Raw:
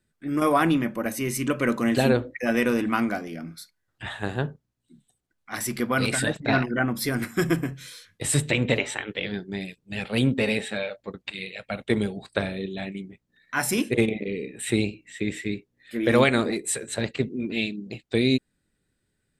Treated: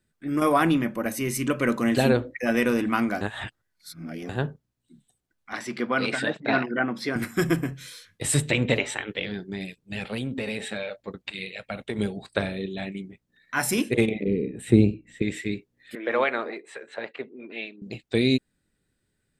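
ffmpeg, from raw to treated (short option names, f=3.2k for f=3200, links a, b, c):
-filter_complex "[0:a]asettb=1/sr,asplit=3[a][b][c];[a]atrim=end=5.534[d];[b]atrim=start=5.53:end=7.16,asetpts=PTS-STARTPTS,afade=t=in:d=0.004:c=qsin,afade=t=out:st=1.626:d=0.004:c=qsin,highpass=220,lowpass=4.2k[e];[c]atrim=start=7.156[f];[d][e]acrossfade=d=0.004:c1=hsin:c2=qsin[g];[g][f]acrossfade=d=0.004:c1=qsin:c2=hsin,asettb=1/sr,asplit=3[h][i][j];[h]atrim=end=9.234[k];[i]atrim=start=9.23:end=11.99,asetpts=PTS-STARTPTS,afade=t=in:d=0.004:c=qsin,afade=t=out:st=2.756:d=0.004:c=qsin,acompressor=threshold=-26dB:ratio=6:attack=3.2:release=140:knee=1:detection=peak[l];[j]atrim=start=11.986[m];[k][l]acrossfade=d=0.004:c1=hsin:c2=qsin[n];[n][m]acrossfade=d=0.004:c1=qsin:c2=hsin,asettb=1/sr,asplit=3[o][p][q];[o]atrim=end=14.234[r];[p]atrim=start=14.23:end=15.22,asetpts=PTS-STARTPTS,afade=t=in:d=0.004:c=qsin,afade=t=out:st=0.986:d=0.004:c=qsin,tiltshelf=f=720:g=9.5[s];[q]atrim=start=15.216[t];[r][s]acrossfade=d=0.004:c1=hsin:c2=qsin[u];[u][t]acrossfade=d=0.004:c1=qsin:c2=hsin,asettb=1/sr,asplit=3[v][w][x];[v]atrim=end=15.954[y];[w]atrim=start=15.95:end=17.82,asetpts=PTS-STARTPTS,afade=t=in:d=0.004:c=qsin,afade=t=out:st=1.866:d=0.004:c=qsin,highpass=570,lowpass=2k[z];[x]atrim=start=17.816[aa];[y][z]acrossfade=d=0.004:c1=hsin:c2=qsin[ab];[ab][aa]acrossfade=d=0.004:c1=qsin:c2=hsin,asplit=3[ac][ad][ae];[ac]atrim=end=3.212[af];[ad]atrim=start=3.208:end=4.292,asetpts=PTS-STARTPTS,areverse[ag];[ae]atrim=start=4.288[ah];[af][ag]acrossfade=d=0.004:c1=hsin:c2=hsin[ai];[ai][ah]acrossfade=d=0.004:c1=hsin:c2=hsin"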